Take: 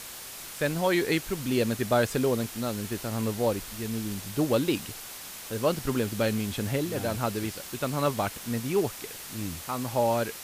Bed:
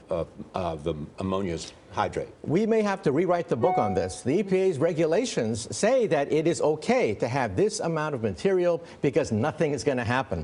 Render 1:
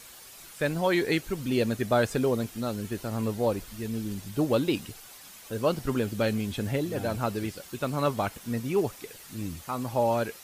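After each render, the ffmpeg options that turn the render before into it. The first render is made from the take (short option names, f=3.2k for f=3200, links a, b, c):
-af "afftdn=nr=9:nf=-42"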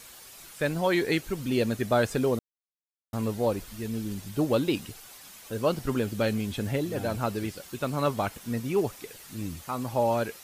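-filter_complex "[0:a]asplit=3[a][b][c];[a]atrim=end=2.39,asetpts=PTS-STARTPTS,afade=t=out:st=2.386:d=0.004:c=hsin[d];[b]atrim=start=2.39:end=3.13,asetpts=PTS-STARTPTS,volume=0[e];[c]atrim=start=3.13,asetpts=PTS-STARTPTS,afade=t=in:d=0.004:c=hsin[f];[d][e][f]concat=n=3:v=0:a=1"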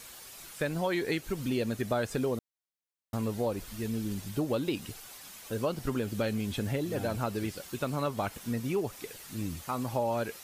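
-af "acompressor=threshold=-28dB:ratio=3"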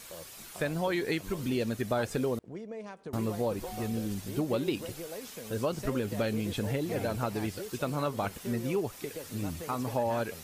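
-filter_complex "[1:a]volume=-18.5dB[a];[0:a][a]amix=inputs=2:normalize=0"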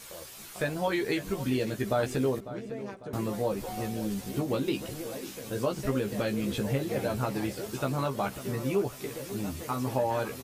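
-filter_complex "[0:a]asplit=2[a][b];[b]adelay=15,volume=-4dB[c];[a][c]amix=inputs=2:normalize=0,asplit=2[d][e];[e]adelay=549,lowpass=f=3.7k:p=1,volume=-14dB,asplit=2[f][g];[g]adelay=549,lowpass=f=3.7k:p=1,volume=0.44,asplit=2[h][i];[i]adelay=549,lowpass=f=3.7k:p=1,volume=0.44,asplit=2[j][k];[k]adelay=549,lowpass=f=3.7k:p=1,volume=0.44[l];[d][f][h][j][l]amix=inputs=5:normalize=0"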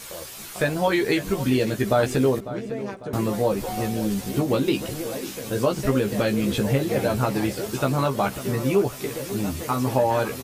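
-af "volume=7.5dB"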